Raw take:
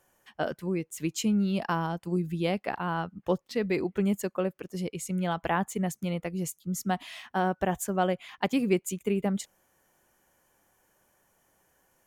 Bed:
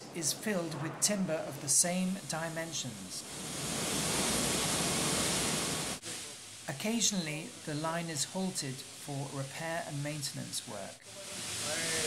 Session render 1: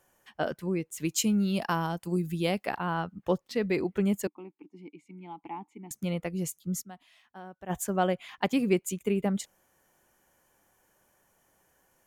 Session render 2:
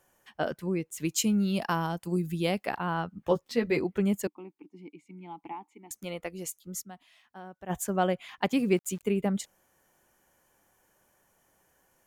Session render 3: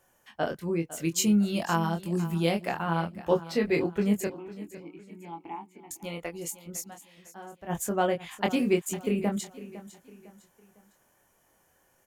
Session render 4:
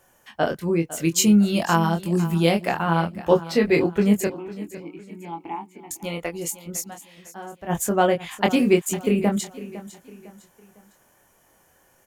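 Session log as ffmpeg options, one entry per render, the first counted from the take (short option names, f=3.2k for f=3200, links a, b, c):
-filter_complex "[0:a]asettb=1/sr,asplit=3[a][b][c];[a]atrim=end=1.054[d];[b]atrim=start=1.05:end=2.77,asetpts=PTS-STARTPTS,afade=t=in:d=0.004:c=qsin,afade=t=out:st=1.716:d=0.004:c=qsin,aemphasis=mode=production:type=cd[e];[c]atrim=start=2.766[f];[d][e]acrossfade=d=0.004:c1=hsin:c2=qsin[g];[g][f]acrossfade=d=0.004:c1=qsin:c2=hsin,asettb=1/sr,asplit=3[h][i][j];[h]atrim=end=4.274[k];[i]atrim=start=4.27:end=5.91,asetpts=PTS-STARTPTS,afade=t=in:d=0.004:c=qsin,afade=t=out:st=1.636:d=0.004:c=qsin,asplit=3[l][m][n];[l]bandpass=f=300:t=q:w=8,volume=0dB[o];[m]bandpass=f=870:t=q:w=8,volume=-6dB[p];[n]bandpass=f=2.24k:t=q:w=8,volume=-9dB[q];[o][p][q]amix=inputs=3:normalize=0[r];[j]atrim=start=5.906[s];[k][r]acrossfade=d=0.004:c1=hsin:c2=qsin[t];[t][s]acrossfade=d=0.004:c1=qsin:c2=hsin,asplit=3[u][v][w];[u]atrim=end=6.96,asetpts=PTS-STARTPTS,afade=t=out:st=6.8:d=0.16:c=exp:silence=0.125893[x];[v]atrim=start=6.96:end=7.55,asetpts=PTS-STARTPTS,volume=-18dB[y];[w]atrim=start=7.55,asetpts=PTS-STARTPTS,afade=t=in:d=0.16:c=exp:silence=0.125893[z];[x][y][z]concat=n=3:v=0:a=1"
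-filter_complex "[0:a]asettb=1/sr,asplit=3[a][b][c];[a]atrim=end=3.204[d];[b]atrim=start=3.2:end=3.79,asetpts=PTS-STARTPTS,afade=t=in:d=0.004:c=qsin,afade=t=out:st=0.586:d=0.004:c=qsin,asplit=2[e][f];[f]adelay=13,volume=-3.5dB[g];[e][g]amix=inputs=2:normalize=0,atrim=end_sample=26019[h];[c]atrim=start=3.786[i];[d][h]acrossfade=d=0.004:c1=hsin:c2=qsin[j];[j][i]acrossfade=d=0.004:c1=qsin:c2=hsin,asettb=1/sr,asplit=3[k][l][m];[k]atrim=end=5.524[n];[l]atrim=start=5.52:end=6.82,asetpts=PTS-STARTPTS,afade=t=in:d=0.004:c=qsin,afade=t=out:st=1.296:d=0.004:c=qsin,equalizer=f=140:w=0.95:g=-14[o];[m]atrim=start=6.816[p];[n][o]acrossfade=d=0.004:c1=hsin:c2=qsin[q];[q][p]acrossfade=d=0.004:c1=qsin:c2=hsin,asettb=1/sr,asplit=3[r][s][t];[r]atrim=end=8.524[u];[s]atrim=start=8.52:end=9.03,asetpts=PTS-STARTPTS,afade=t=in:d=0.004:c=qsin,afade=t=out:st=0.506:d=0.004:c=qsin,aeval=exprs='val(0)*gte(abs(val(0)),0.00335)':c=same[v];[t]atrim=start=9.026[w];[u][v]acrossfade=d=0.004:c1=hsin:c2=qsin[x];[x][w]acrossfade=d=0.004:c1=qsin:c2=hsin"
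-filter_complex "[0:a]asplit=2[a][b];[b]adelay=24,volume=-4.5dB[c];[a][c]amix=inputs=2:normalize=0,aecho=1:1:505|1010|1515:0.158|0.0602|0.0229"
-af "volume=7dB"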